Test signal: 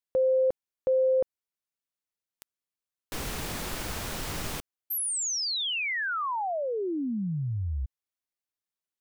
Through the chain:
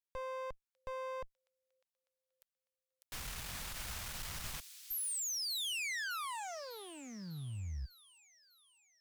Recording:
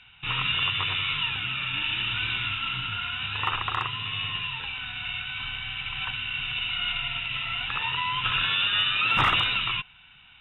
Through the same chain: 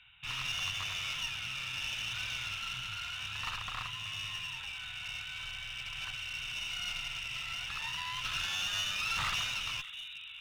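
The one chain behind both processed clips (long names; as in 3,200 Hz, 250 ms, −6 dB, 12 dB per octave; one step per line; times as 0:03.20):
delay with a high-pass on its return 600 ms, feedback 52%, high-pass 3,700 Hz, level −8.5 dB
asymmetric clip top −34 dBFS
parametric band 350 Hz −14.5 dB 1.9 octaves
level −6 dB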